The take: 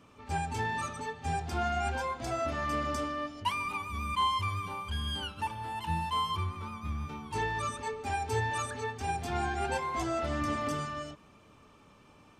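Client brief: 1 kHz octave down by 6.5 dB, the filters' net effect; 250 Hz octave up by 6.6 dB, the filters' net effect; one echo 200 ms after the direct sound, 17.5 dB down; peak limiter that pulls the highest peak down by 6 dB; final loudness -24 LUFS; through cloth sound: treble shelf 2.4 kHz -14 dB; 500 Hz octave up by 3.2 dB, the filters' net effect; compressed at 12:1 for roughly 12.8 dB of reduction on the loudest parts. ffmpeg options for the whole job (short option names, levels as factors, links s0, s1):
-af "equalizer=f=250:t=o:g=7.5,equalizer=f=500:t=o:g=5.5,equalizer=f=1000:t=o:g=-8,acompressor=threshold=0.0141:ratio=12,alimiter=level_in=2.99:limit=0.0631:level=0:latency=1,volume=0.335,highshelf=f=2400:g=-14,aecho=1:1:200:0.133,volume=10"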